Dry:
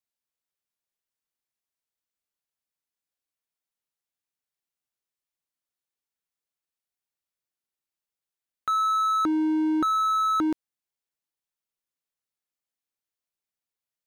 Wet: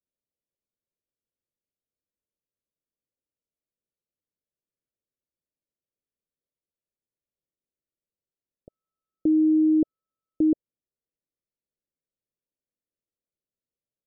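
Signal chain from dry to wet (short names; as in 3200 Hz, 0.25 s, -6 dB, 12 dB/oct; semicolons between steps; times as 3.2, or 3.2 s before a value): steep low-pass 620 Hz 72 dB/oct; gain +4.5 dB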